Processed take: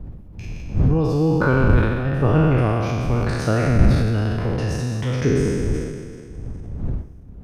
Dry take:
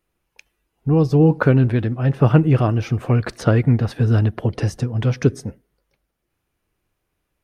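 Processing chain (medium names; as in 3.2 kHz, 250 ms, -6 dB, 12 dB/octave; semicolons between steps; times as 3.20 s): spectral sustain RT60 2.37 s; wind noise 100 Hz -18 dBFS; transient shaper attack 0 dB, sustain +5 dB; trim -6.5 dB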